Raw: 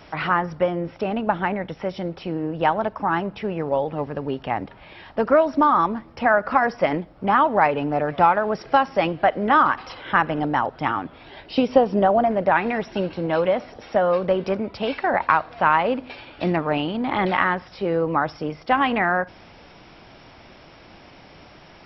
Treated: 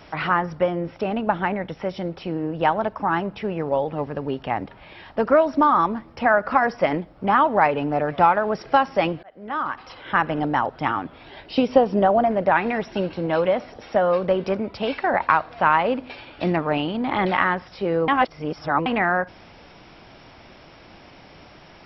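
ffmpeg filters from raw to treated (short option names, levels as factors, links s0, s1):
-filter_complex "[0:a]asplit=4[s0][s1][s2][s3];[s0]atrim=end=9.23,asetpts=PTS-STARTPTS,afade=t=out:st=9.226:d=0.004:c=hsin[s4];[s1]atrim=start=9.23:end=18.082,asetpts=PTS-STARTPTS,afade=t=in:d=1.11[s5];[s2]atrim=start=18.078:end=18.862,asetpts=PTS-STARTPTS,areverse[s6];[s3]atrim=start=18.858[s7];[s4][s5]concat=n=2:v=0:a=1[s8];[s8][s6]acrossfade=d=0.004:c1=hsin:c2=hsin[s9];[s9][s7]acrossfade=d=0.004:c1=hsin:c2=hsin"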